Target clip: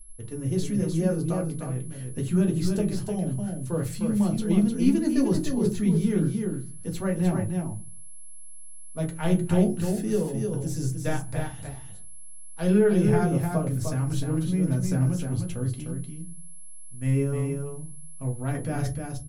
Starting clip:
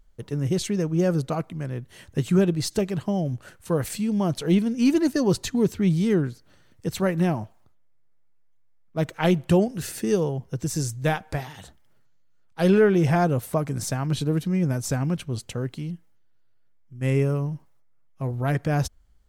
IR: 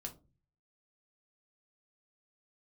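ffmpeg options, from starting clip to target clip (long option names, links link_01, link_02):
-filter_complex "[0:a]lowshelf=frequency=76:gain=11,acrossover=split=470|1700[link_01][link_02][link_03];[link_03]asoftclip=type=tanh:threshold=-24.5dB[link_04];[link_01][link_02][link_04]amix=inputs=3:normalize=0,aeval=exprs='val(0)+0.00562*sin(2*PI*11000*n/s)':channel_layout=same,aecho=1:1:304:0.562[link_05];[1:a]atrim=start_sample=2205,asetrate=52920,aresample=44100[link_06];[link_05][link_06]afir=irnorm=-1:irlink=0,volume=-2dB"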